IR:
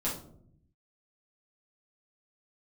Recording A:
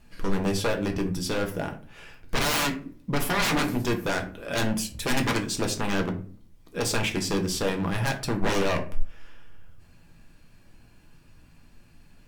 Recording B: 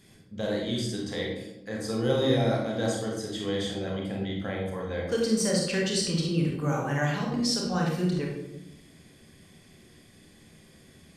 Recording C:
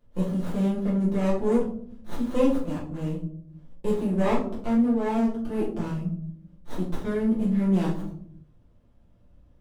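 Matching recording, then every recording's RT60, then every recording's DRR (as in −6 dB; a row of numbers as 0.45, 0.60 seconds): C; 0.45, 0.90, 0.65 seconds; 3.5, −2.0, −8.0 decibels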